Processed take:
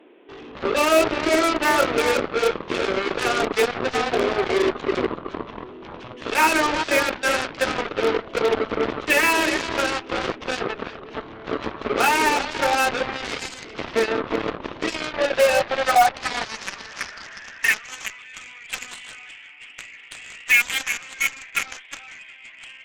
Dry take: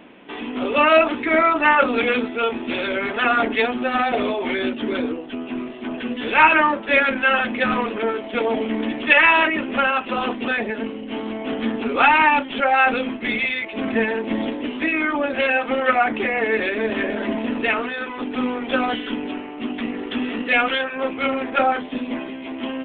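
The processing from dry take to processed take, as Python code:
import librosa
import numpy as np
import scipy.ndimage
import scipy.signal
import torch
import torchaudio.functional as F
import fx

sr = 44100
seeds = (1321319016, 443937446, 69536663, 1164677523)

y = fx.echo_filtered(x, sr, ms=362, feedback_pct=18, hz=2000.0, wet_db=-6)
y = fx.filter_sweep_highpass(y, sr, from_hz=370.0, to_hz=2200.0, start_s=14.75, end_s=18.02, q=3.9)
y = fx.cheby_harmonics(y, sr, harmonics=(3, 6, 7, 8), levels_db=(-22, -27, -14, -42), full_scale_db=-6.5)
y = y * 10.0 ** (-5.5 / 20.0)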